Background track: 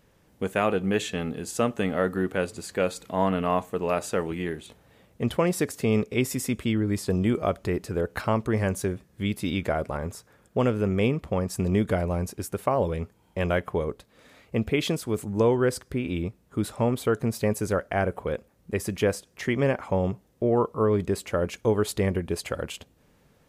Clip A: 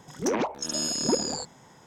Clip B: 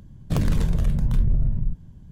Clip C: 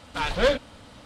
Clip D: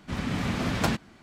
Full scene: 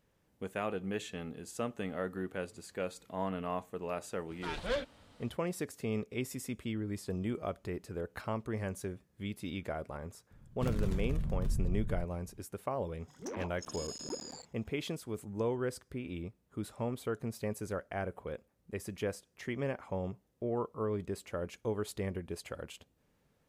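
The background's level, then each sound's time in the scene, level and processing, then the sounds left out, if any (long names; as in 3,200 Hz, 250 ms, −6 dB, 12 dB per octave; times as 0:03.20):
background track −12 dB
0:04.27: mix in C −13 dB, fades 0.05 s
0:10.31: mix in B −13 dB
0:13.00: mix in A −15.5 dB + regular buffer underruns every 0.11 s zero
not used: D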